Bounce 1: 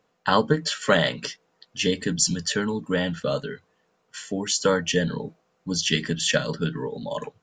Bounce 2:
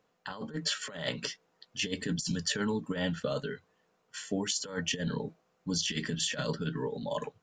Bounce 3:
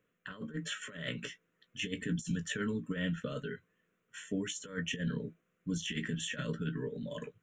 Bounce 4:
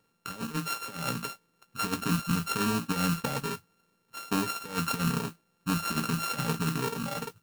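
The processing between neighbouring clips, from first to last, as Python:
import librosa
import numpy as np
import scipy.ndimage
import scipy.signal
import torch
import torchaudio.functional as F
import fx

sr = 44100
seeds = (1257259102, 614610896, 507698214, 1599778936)

y1 = fx.over_compress(x, sr, threshold_db=-25.0, ratio=-0.5)
y1 = F.gain(torch.from_numpy(y1), -6.5).numpy()
y2 = fx.fixed_phaser(y1, sr, hz=2000.0, stages=4)
y2 = fx.doubler(y2, sr, ms=17.0, db=-11.5)
y2 = F.gain(torch.from_numpy(y2), -1.5).numpy()
y3 = np.r_[np.sort(y2[:len(y2) // 32 * 32].reshape(-1, 32), axis=1).ravel(), y2[len(y2) // 32 * 32:]]
y3 = fx.mod_noise(y3, sr, seeds[0], snr_db=15)
y3 = F.gain(torch.from_numpy(y3), 6.5).numpy()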